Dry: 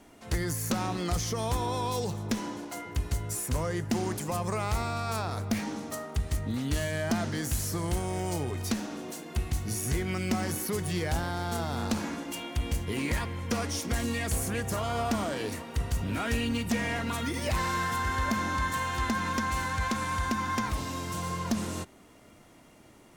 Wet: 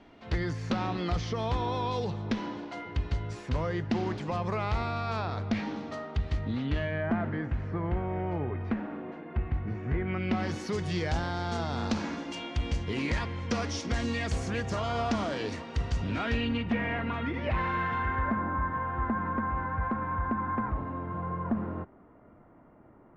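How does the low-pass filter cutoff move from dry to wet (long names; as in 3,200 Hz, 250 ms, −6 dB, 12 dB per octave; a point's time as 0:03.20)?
low-pass filter 24 dB per octave
0:06.52 4,200 Hz
0:07.11 2,100 Hz
0:10.03 2,100 Hz
0:10.61 5,700 Hz
0:16.06 5,700 Hz
0:16.78 2,700 Hz
0:17.97 2,700 Hz
0:18.44 1,500 Hz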